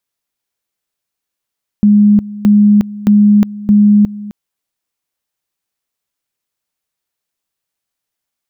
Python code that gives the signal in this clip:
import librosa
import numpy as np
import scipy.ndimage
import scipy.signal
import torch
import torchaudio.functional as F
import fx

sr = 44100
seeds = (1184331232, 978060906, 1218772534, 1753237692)

y = fx.two_level_tone(sr, hz=207.0, level_db=-4.0, drop_db=18.5, high_s=0.36, low_s=0.26, rounds=4)